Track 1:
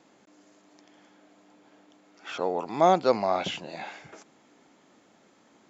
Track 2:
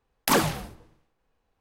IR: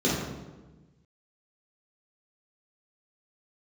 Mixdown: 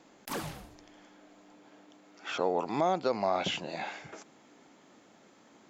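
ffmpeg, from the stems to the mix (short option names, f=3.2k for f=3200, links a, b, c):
-filter_complex "[0:a]volume=1dB[a];[1:a]alimiter=limit=-14dB:level=0:latency=1:release=196,volume=-11dB[b];[a][b]amix=inputs=2:normalize=0,alimiter=limit=-17dB:level=0:latency=1:release=229"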